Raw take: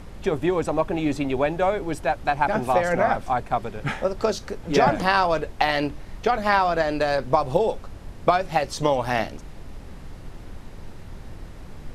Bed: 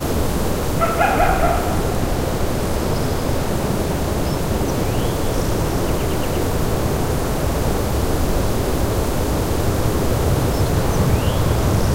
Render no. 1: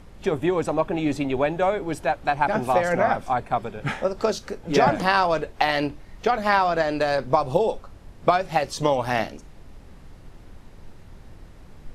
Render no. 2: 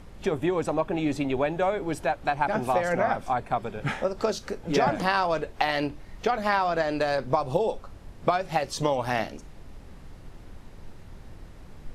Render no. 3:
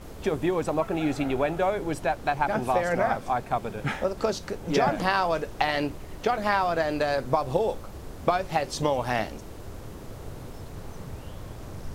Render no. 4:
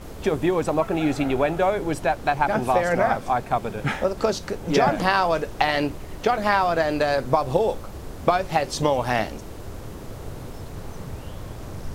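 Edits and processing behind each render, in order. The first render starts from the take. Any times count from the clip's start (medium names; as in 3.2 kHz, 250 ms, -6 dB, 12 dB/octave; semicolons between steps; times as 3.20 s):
noise print and reduce 6 dB
compression 1.5:1, threshold -27 dBFS, peak gain reduction 5.5 dB
add bed -23.5 dB
trim +4 dB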